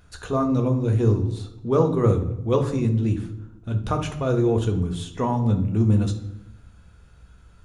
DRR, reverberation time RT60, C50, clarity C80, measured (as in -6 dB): 3.5 dB, 0.85 s, 10.0 dB, 14.0 dB